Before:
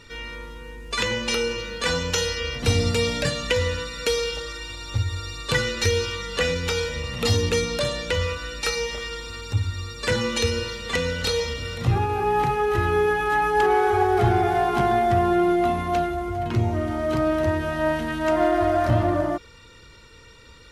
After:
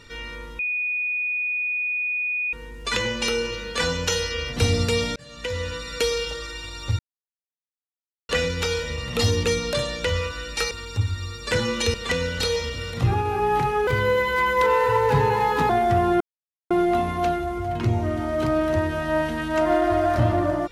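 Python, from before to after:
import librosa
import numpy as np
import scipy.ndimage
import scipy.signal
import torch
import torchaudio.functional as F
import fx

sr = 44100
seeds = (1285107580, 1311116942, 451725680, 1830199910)

y = fx.edit(x, sr, fx.insert_tone(at_s=0.59, length_s=1.94, hz=2470.0, db=-22.5),
    fx.fade_in_span(start_s=3.22, length_s=0.72),
    fx.silence(start_s=5.05, length_s=1.3),
    fx.cut(start_s=8.77, length_s=0.5),
    fx.cut(start_s=10.5, length_s=0.28),
    fx.speed_span(start_s=12.71, length_s=2.19, speed=1.2),
    fx.insert_silence(at_s=15.41, length_s=0.5), tone=tone)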